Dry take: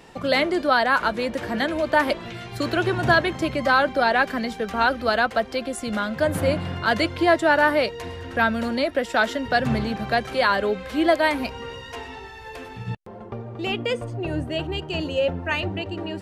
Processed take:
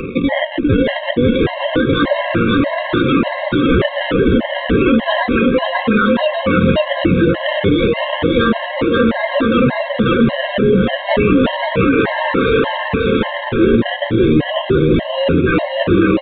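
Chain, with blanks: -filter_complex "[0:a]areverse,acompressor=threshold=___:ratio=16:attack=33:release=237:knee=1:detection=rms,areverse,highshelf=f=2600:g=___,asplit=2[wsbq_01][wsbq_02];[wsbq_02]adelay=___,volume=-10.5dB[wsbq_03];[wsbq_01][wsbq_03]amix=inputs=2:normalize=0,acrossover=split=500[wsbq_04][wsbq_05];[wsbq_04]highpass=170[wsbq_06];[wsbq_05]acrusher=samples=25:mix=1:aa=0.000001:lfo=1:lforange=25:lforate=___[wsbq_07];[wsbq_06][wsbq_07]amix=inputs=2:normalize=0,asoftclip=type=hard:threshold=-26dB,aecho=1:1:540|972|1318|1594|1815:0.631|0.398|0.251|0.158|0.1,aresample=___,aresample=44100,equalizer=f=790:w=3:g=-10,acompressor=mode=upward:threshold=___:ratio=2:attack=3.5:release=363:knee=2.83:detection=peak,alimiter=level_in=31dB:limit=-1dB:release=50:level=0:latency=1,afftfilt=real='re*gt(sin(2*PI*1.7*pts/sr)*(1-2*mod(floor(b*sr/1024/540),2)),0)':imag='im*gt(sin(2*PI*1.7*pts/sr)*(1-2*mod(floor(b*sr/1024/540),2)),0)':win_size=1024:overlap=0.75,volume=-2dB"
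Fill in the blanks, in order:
-31dB, -7, 21, 0.31, 8000, -46dB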